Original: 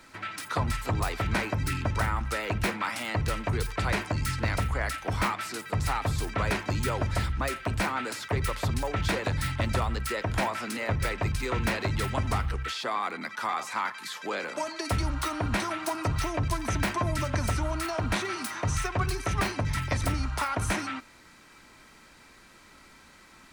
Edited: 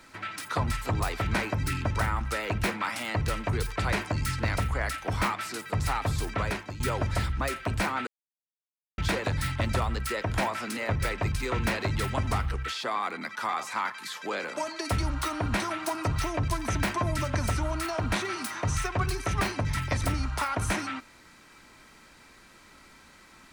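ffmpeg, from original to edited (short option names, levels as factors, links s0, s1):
-filter_complex "[0:a]asplit=4[s0][s1][s2][s3];[s0]atrim=end=6.8,asetpts=PTS-STARTPTS,afade=t=out:st=6.34:d=0.46:silence=0.199526[s4];[s1]atrim=start=6.8:end=8.07,asetpts=PTS-STARTPTS,afade=t=in:d=0.004:c=hsin:silence=0.199526,afade=t=out:st=1.266:d=0.004:c=hsin[s5];[s2]atrim=start=8.07:end=8.98,asetpts=PTS-STARTPTS,volume=0[s6];[s3]atrim=start=8.98,asetpts=PTS-STARTPTS,afade=t=in:d=0.004:c=hsin[s7];[s4][s5][s6][s7]concat=n=4:v=0:a=1"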